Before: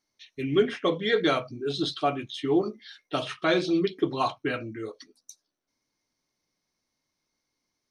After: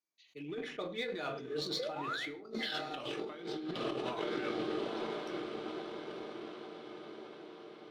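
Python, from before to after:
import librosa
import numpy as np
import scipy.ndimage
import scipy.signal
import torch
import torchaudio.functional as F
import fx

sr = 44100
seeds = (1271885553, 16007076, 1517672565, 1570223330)

p1 = fx.doppler_pass(x, sr, speed_mps=24, closest_m=1.6, pass_at_s=2.6)
p2 = fx.highpass(p1, sr, hz=280.0, slope=6)
p3 = fx.high_shelf(p2, sr, hz=5400.0, db=-4.5)
p4 = p3 + fx.echo_diffused(p3, sr, ms=936, feedback_pct=62, wet_db=-11.0, dry=0)
p5 = fx.spec_paint(p4, sr, seeds[0], shape='rise', start_s=1.79, length_s=0.5, low_hz=470.0, high_hz=2400.0, level_db=-54.0)
p6 = np.sign(p5) * np.maximum(np.abs(p5) - 10.0 ** (-59.5 / 20.0), 0.0)
p7 = p5 + (p6 * 10.0 ** (-7.0 / 20.0))
p8 = fx.over_compress(p7, sr, threshold_db=-53.0, ratio=-1.0)
p9 = fx.room_shoebox(p8, sr, seeds[1], volume_m3=330.0, walls='furnished', distance_m=0.54)
p10 = fx.sustainer(p9, sr, db_per_s=66.0)
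y = p10 * 10.0 ** (11.5 / 20.0)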